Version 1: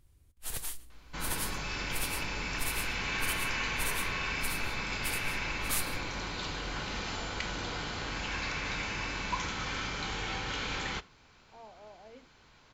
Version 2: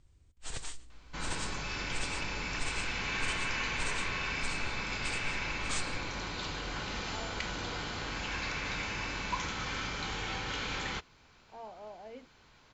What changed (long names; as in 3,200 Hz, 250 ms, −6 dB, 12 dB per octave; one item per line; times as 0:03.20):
speech +5.0 dB
first sound: add Butterworth low-pass 8,500 Hz 96 dB per octave
second sound: send off